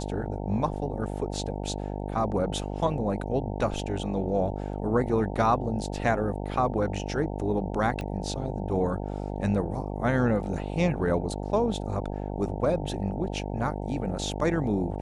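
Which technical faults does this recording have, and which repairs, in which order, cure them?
buzz 50 Hz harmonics 18 -33 dBFS
8.01 pop -22 dBFS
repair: de-click; de-hum 50 Hz, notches 18

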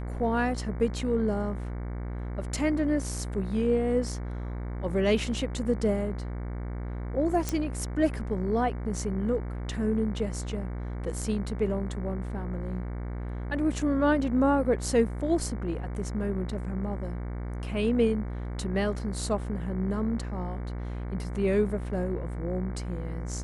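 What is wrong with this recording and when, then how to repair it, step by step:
buzz 60 Hz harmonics 38 -34 dBFS
7.49 pop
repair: de-click; de-hum 60 Hz, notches 38

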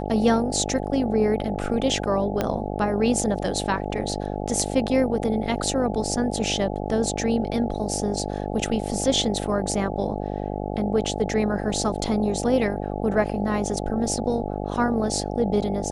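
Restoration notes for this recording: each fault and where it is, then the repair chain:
buzz 50 Hz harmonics 17 -29 dBFS
2.41 pop -9 dBFS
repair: de-click; de-hum 50 Hz, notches 17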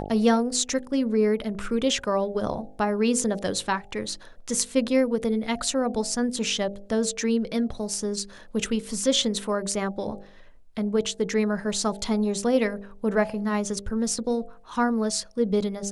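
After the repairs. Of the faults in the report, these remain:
2.41 pop

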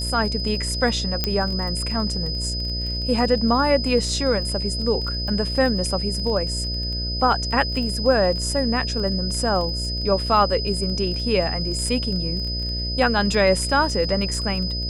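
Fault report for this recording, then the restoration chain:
buzz 60 Hz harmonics 11 -28 dBFS
crackle 22/s -29 dBFS
tone 5000 Hz -27 dBFS
1.24 pop -6 dBFS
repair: de-click; de-hum 60 Hz, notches 11; notch 5000 Hz, Q 30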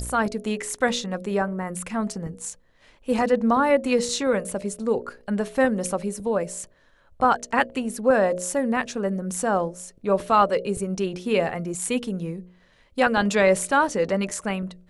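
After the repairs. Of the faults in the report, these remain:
none

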